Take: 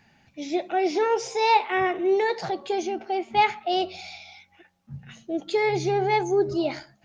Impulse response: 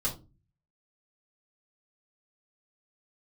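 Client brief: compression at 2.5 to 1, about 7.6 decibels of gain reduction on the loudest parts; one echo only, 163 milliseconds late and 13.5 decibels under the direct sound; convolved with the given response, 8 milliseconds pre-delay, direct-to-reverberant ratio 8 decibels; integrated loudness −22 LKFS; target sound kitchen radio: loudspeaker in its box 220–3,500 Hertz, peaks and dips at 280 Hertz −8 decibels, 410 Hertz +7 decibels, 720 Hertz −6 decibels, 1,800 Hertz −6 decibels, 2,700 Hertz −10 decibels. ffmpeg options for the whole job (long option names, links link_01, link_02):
-filter_complex "[0:a]acompressor=threshold=-26dB:ratio=2.5,aecho=1:1:163:0.211,asplit=2[link_01][link_02];[1:a]atrim=start_sample=2205,adelay=8[link_03];[link_02][link_03]afir=irnorm=-1:irlink=0,volume=-13dB[link_04];[link_01][link_04]amix=inputs=2:normalize=0,highpass=220,equalizer=frequency=280:width_type=q:width=4:gain=-8,equalizer=frequency=410:width_type=q:width=4:gain=7,equalizer=frequency=720:width_type=q:width=4:gain=-6,equalizer=frequency=1800:width_type=q:width=4:gain=-6,equalizer=frequency=2700:width_type=q:width=4:gain=-10,lowpass=frequency=3500:width=0.5412,lowpass=frequency=3500:width=1.3066,volume=4.5dB"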